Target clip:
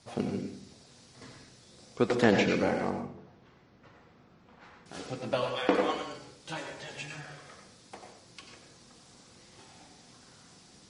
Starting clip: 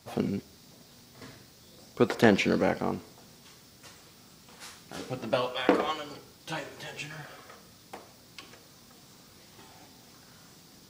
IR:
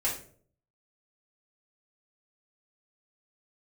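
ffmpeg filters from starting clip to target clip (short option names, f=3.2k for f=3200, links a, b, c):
-filter_complex "[0:a]asettb=1/sr,asplit=3[a][b][c];[a]atrim=end=2.904[d];[b]atrim=start=2.9:end=4.86,asetpts=PTS-STARTPTS,afade=t=in:d=0.004:c=qsin,afade=t=out:st=1.956:d=0.004:c=qsin,lowpass=1.8k[e];[c]atrim=start=4.856[f];[d][e]acrossfade=d=0.004:c1=hsin:c2=qsin[g];[g][f]acrossfade=d=0.004:c1=qsin:c2=hsin,asplit=2[h][i];[1:a]atrim=start_sample=2205,asetrate=41013,aresample=44100,adelay=89[j];[i][j]afir=irnorm=-1:irlink=0,volume=-11.5dB[k];[h][k]amix=inputs=2:normalize=0,volume=-2.5dB" -ar 32000 -c:a libmp3lame -b:a 40k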